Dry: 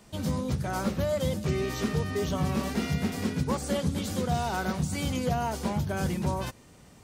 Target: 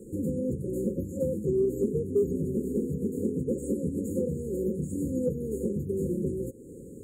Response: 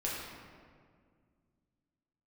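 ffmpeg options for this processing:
-af "afftfilt=real='re*(1-between(b*sr/4096,550,6600))':imag='im*(1-between(b*sr/4096,550,6600))':win_size=4096:overlap=0.75,acompressor=threshold=-46dB:ratio=2,equalizer=f=380:t=o:w=1.6:g=14.5,acontrast=84,volume=-4dB"

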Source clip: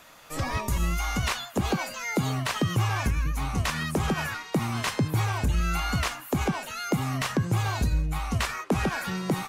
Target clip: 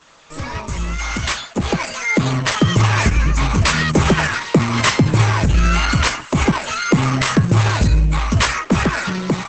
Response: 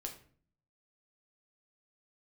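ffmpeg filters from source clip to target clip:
-filter_complex "[0:a]bandreject=f=60:t=h:w=6,bandreject=f=120:t=h:w=6,adynamicequalizer=threshold=0.00398:dfrequency=2100:dqfactor=7.3:tfrequency=2100:tqfactor=7.3:attack=5:release=100:ratio=0.375:range=1.5:mode=boostabove:tftype=bell,asuperstop=centerf=740:order=12:qfactor=6.7,dynaudnorm=f=790:g=5:m=11.5dB,asplit=3[a][b][c];[a]afade=t=out:st=5.8:d=0.02[d];[b]tremolo=f=45:d=0.261,afade=t=in:st=5.8:d=0.02,afade=t=out:st=6.64:d=0.02[e];[c]afade=t=in:st=6.64:d=0.02[f];[d][e][f]amix=inputs=3:normalize=0,acontrast=37,volume=-2dB" -ar 48000 -c:a libopus -b:a 10k

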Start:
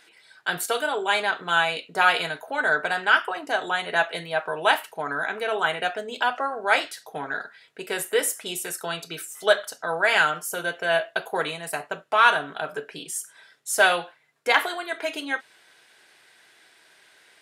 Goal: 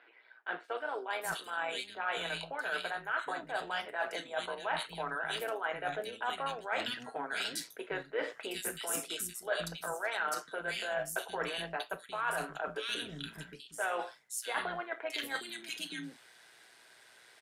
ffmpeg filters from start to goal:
-filter_complex "[0:a]tremolo=f=120:d=0.519,dynaudnorm=f=550:g=11:m=11.5dB,acrossover=split=270|2600[a][b][c];[c]adelay=640[d];[a]adelay=760[e];[e][b][d]amix=inputs=3:normalize=0,areverse,acompressor=threshold=-35dB:ratio=4,areverse"

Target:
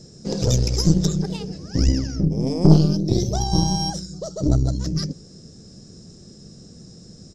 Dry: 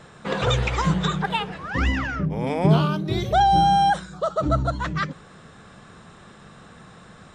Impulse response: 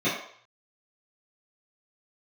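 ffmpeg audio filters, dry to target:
-af "firequalizer=gain_entry='entry(350,0);entry(980,-27);entry(3600,-15);entry(5100,13);entry(8900,-6)':delay=0.05:min_phase=1,aeval=exprs='0.447*(cos(1*acos(clip(val(0)/0.447,-1,1)))-cos(1*PI/2))+0.0891*(cos(4*acos(clip(val(0)/0.447,-1,1)))-cos(4*PI/2))':c=same,volume=4.5dB"

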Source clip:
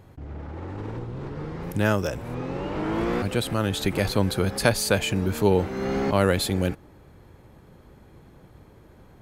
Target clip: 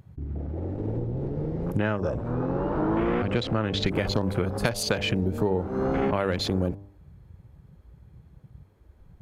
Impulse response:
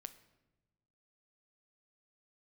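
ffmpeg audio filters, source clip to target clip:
-filter_complex "[0:a]afwtdn=0.02,asettb=1/sr,asplit=3[a][b][c];[a]atrim=end=1.774[d];[b]atrim=start=1.77:end=3.86,asetpts=PTS-STARTPTS,afade=t=in:d=0.004:c=qsin,afade=t=out:st=2.086:d=0.004:c=qsin,lowpass=6.1k[e];[c]atrim=start=3.856[f];[d][e]acrossfade=d=0.004:c1=hsin:c2=qsin[g];[g][f]acrossfade=d=0.004:c1=qsin:c2=hsin,bandreject=f=99.66:t=h:w=4,bandreject=f=199.32:t=h:w=4,bandreject=f=298.98:t=h:w=4,bandreject=f=398.64:t=h:w=4,bandreject=f=498.3:t=h:w=4,bandreject=f=597.96:t=h:w=4,bandreject=f=697.62:t=h:w=4,bandreject=f=797.28:t=h:w=4,bandreject=f=896.94:t=h:w=4,bandreject=f=996.6:t=h:w=4,bandreject=f=1.09626k:t=h:w=4,acompressor=threshold=-25dB:ratio=12,volume=4.5dB"

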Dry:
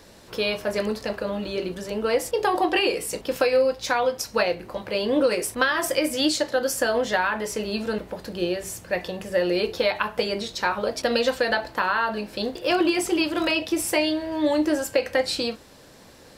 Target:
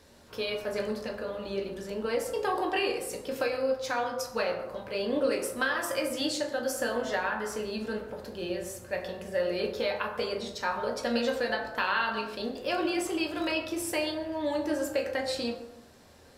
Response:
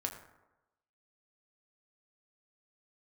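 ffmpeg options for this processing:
-filter_complex "[0:a]asettb=1/sr,asplit=3[a][b][c];[a]atrim=end=11.784[d];[b]atrim=start=11.78:end=12.35,asetpts=PTS-STARTPTS,afade=t=in:d=0.004:c=qsin,afade=t=out:st=0.566:d=0.004:c=qsin,equalizer=f=3.2k:t=o:w=1.3:g=11[e];[c]atrim=start=12.346[f];[d][e]acrossfade=d=0.004:c1=hsin:c2=qsin[g];[g][f]acrossfade=d=0.004:c1=qsin:c2=hsin[h];[1:a]atrim=start_sample=2205,afade=t=out:st=0.4:d=0.01,atrim=end_sample=18081,asetrate=37485,aresample=44100[i];[h][i]afir=irnorm=-1:irlink=0,volume=-8.5dB"

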